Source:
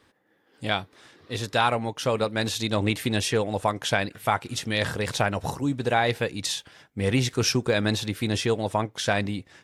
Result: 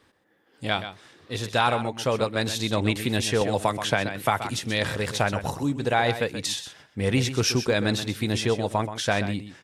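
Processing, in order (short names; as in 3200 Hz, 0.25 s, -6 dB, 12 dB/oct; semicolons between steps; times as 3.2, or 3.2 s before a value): echo 0.128 s -11 dB; 3.41–4.58 three-band squash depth 70%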